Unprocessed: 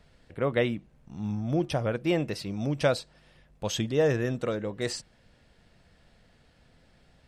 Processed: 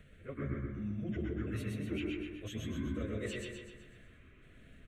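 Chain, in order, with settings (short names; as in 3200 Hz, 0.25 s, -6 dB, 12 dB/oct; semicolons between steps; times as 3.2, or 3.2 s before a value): trilling pitch shifter -9 st, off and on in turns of 0.55 s; high shelf 11000 Hz -3 dB; notches 60/120/180/240/300/360 Hz; reverse; compressor 16:1, threshold -38 dBFS, peak gain reduction 20 dB; reverse; fixed phaser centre 2100 Hz, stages 4; plain phase-vocoder stretch 0.67×; feedback echo 0.126 s, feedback 50%, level -4 dB; on a send at -3 dB: reverb RT60 0.55 s, pre-delay 0.101 s; on the sum: gain +5.5 dB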